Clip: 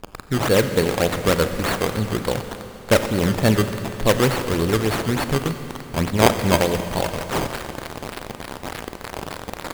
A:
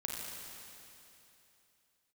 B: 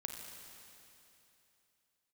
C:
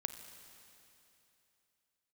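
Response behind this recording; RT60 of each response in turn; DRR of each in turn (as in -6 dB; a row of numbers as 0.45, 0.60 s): C; 2.9, 2.9, 3.0 s; -2.5, 2.0, 8.0 dB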